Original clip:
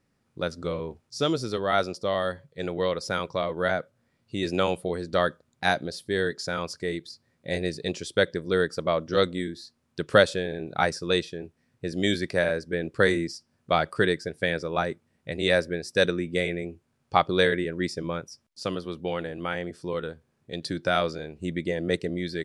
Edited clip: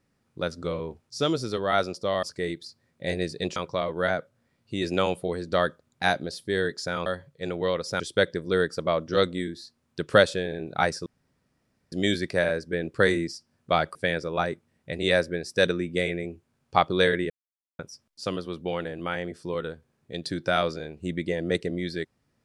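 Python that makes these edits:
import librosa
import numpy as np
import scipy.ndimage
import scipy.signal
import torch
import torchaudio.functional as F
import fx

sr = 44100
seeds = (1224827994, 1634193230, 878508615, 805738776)

y = fx.edit(x, sr, fx.swap(start_s=2.23, length_s=0.94, other_s=6.67, other_length_s=1.33),
    fx.room_tone_fill(start_s=11.06, length_s=0.86),
    fx.cut(start_s=13.95, length_s=0.39),
    fx.silence(start_s=17.69, length_s=0.49), tone=tone)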